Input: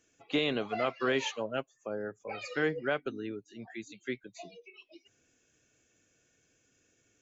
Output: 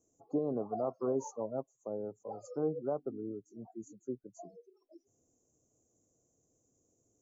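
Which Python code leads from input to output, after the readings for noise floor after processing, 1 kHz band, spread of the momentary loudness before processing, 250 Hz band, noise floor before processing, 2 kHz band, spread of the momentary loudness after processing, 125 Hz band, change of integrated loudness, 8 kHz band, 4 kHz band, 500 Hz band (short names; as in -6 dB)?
-77 dBFS, -5.5 dB, 16 LU, -2.0 dB, -72 dBFS, under -30 dB, 14 LU, -2.0 dB, -4.0 dB, n/a, under -35 dB, -2.0 dB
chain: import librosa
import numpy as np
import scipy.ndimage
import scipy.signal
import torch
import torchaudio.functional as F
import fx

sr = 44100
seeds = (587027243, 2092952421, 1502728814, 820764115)

y = fx.spec_gate(x, sr, threshold_db=-30, keep='strong')
y = scipy.signal.sosfilt(scipy.signal.cheby2(4, 50, [1700.0, 3800.0], 'bandstop', fs=sr, output='sos'), y)
y = y * 10.0 ** (-2.0 / 20.0)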